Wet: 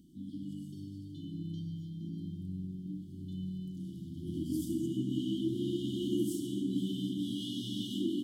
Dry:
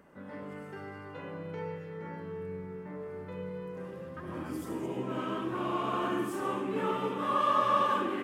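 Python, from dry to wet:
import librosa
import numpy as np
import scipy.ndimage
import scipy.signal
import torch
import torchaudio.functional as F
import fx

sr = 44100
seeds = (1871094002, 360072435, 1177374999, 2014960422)

y = fx.brickwall_bandstop(x, sr, low_hz=360.0, high_hz=2900.0)
y = y * librosa.db_to_amplitude(4.0)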